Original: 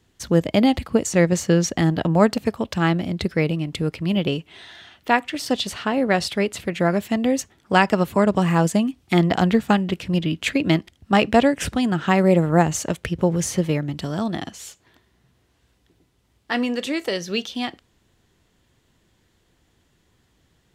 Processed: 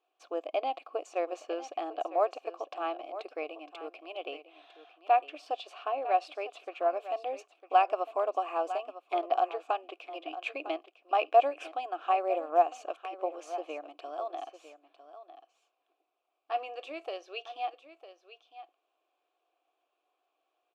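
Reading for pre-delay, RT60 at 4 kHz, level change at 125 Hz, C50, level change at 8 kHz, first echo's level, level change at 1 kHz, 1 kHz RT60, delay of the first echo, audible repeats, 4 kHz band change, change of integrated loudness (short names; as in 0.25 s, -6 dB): none, none, under -40 dB, none, under -25 dB, -13.5 dB, -4.0 dB, none, 0.953 s, 1, -17.5 dB, -11.5 dB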